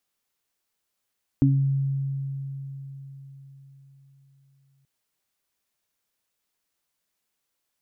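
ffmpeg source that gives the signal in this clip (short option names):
-f lavfi -i "aevalsrc='0.15*pow(10,-3*t/4.47)*sin(2*PI*137*t)+0.2*pow(10,-3*t/0.37)*sin(2*PI*274*t)':d=3.43:s=44100"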